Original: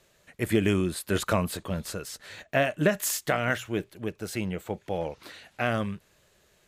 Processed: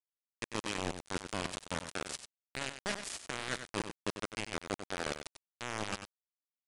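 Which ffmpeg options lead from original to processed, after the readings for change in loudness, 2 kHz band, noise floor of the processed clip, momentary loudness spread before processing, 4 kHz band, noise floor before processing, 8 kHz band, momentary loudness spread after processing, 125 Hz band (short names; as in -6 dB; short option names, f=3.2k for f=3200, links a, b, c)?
-10.5 dB, -8.5 dB, under -85 dBFS, 12 LU, -3.0 dB, -65 dBFS, -7.5 dB, 7 LU, -15.0 dB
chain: -filter_complex "[0:a]highpass=130,equalizer=f=810:w=6.5:g=-14,areverse,acompressor=threshold=-40dB:ratio=12,areverse,acrusher=bits=5:mix=0:aa=0.000001,asplit=2[a][b];[b]aecho=0:1:95:0.335[c];[a][c]amix=inputs=2:normalize=0,aresample=22050,aresample=44100,volume=6dB"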